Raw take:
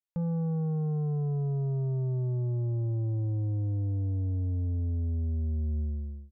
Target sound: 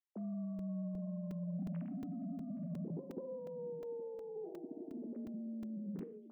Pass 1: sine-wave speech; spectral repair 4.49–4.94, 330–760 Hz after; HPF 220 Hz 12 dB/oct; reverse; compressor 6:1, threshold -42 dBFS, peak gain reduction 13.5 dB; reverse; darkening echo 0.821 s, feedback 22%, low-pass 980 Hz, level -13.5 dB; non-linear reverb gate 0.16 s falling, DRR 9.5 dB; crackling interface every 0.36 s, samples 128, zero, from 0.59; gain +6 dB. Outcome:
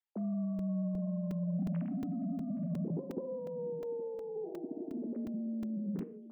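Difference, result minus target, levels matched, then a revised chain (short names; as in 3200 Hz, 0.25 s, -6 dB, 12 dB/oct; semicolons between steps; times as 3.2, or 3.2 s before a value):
compressor: peak gain reduction -6 dB
sine-wave speech; spectral repair 4.49–4.94, 330–760 Hz after; HPF 220 Hz 12 dB/oct; reverse; compressor 6:1, threshold -49.5 dBFS, peak gain reduction 19.5 dB; reverse; darkening echo 0.821 s, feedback 22%, low-pass 980 Hz, level -13.5 dB; non-linear reverb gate 0.16 s falling, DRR 9.5 dB; crackling interface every 0.36 s, samples 128, zero, from 0.59; gain +6 dB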